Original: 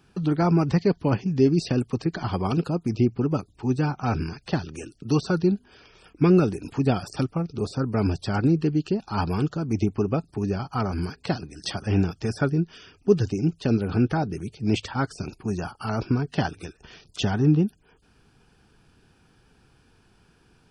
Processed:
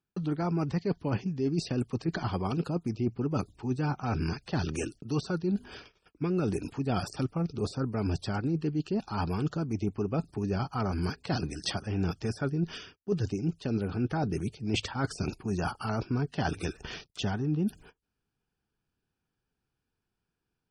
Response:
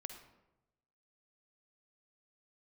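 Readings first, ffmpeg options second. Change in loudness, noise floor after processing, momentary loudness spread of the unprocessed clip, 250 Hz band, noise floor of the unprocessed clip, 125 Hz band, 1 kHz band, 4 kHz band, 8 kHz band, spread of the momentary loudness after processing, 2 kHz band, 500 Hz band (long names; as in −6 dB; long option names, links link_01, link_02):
−7.0 dB, −85 dBFS, 10 LU, −7.0 dB, −61 dBFS, −6.5 dB, −5.5 dB, −3.0 dB, −2.0 dB, 4 LU, −4.5 dB, −7.5 dB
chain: -af "agate=range=-32dB:threshold=-50dB:ratio=16:detection=peak,areverse,acompressor=threshold=-35dB:ratio=6,areverse,volume=7dB"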